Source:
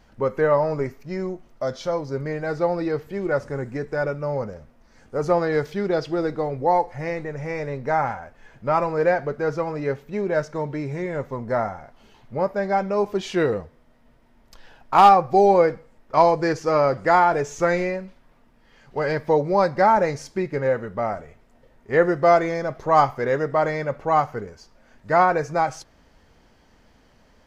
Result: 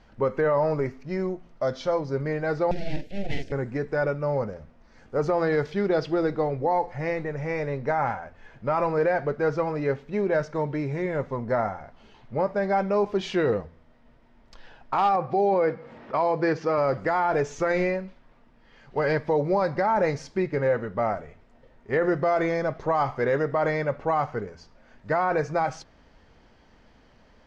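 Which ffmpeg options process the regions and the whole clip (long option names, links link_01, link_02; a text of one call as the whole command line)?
ffmpeg -i in.wav -filter_complex "[0:a]asettb=1/sr,asplit=3[link_01][link_02][link_03];[link_01]atrim=end=2.714[link_04];[link_02]atrim=start=2.71:end=3.52,asetpts=PTS-STARTPTS,afade=type=in:duration=0.004:curve=qsin,afade=type=out:start_time=0.806:duration=0.004:curve=qsin,asplit=2[link_05][link_06];[link_06]adelay=45,volume=-5.5dB[link_07];[link_05][link_07]amix=inputs=2:normalize=0,atrim=end_sample=35721,aeval=exprs='abs(val(0))':channel_layout=same,asuperstop=centerf=1100:order=4:qfactor=0.71[link_08];[link_03]atrim=start=3.516[link_09];[link_04][link_08]acrossfade=duration=0.004:curve1=hsin:curve2=qsin[link_10];[link_10][link_09]acrossfade=duration=0.004:curve1=qsin:curve2=hsin,asettb=1/sr,asplit=3[link_11][link_12][link_13];[link_11]atrim=end=15.164[link_14];[link_12]atrim=start=15.16:end=16.78,asetpts=PTS-STARTPTS,afade=type=in:duration=0.004:curve=qsin,afade=type=out:start_time=1.616:duration=0.004:curve=qsin,highpass=120,lowpass=4300,acompressor=mode=upward:threshold=-30dB:ratio=2.5:attack=3.2:release=140:knee=2.83:detection=peak[link_15];[link_13]atrim=start=16.776[link_16];[link_14][link_15]acrossfade=duration=0.004:curve1=hsin:curve2=qsin[link_17];[link_17][link_16]acrossfade=duration=0.004:curve1=qsin:curve2=hsin,alimiter=limit=-15dB:level=0:latency=1:release=29,lowpass=5000,bandreject=frequency=86.07:width_type=h:width=4,bandreject=frequency=172.14:width_type=h:width=4,bandreject=frequency=258.21:width_type=h:width=4" out.wav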